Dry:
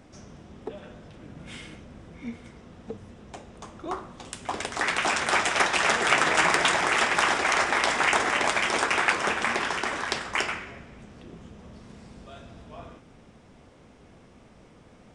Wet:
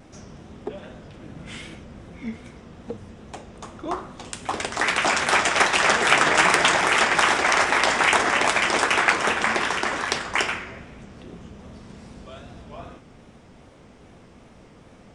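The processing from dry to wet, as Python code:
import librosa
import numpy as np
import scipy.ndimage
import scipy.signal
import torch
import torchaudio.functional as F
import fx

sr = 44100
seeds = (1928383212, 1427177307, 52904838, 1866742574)

y = fx.vibrato(x, sr, rate_hz=2.5, depth_cents=75.0)
y = F.gain(torch.from_numpy(y), 4.0).numpy()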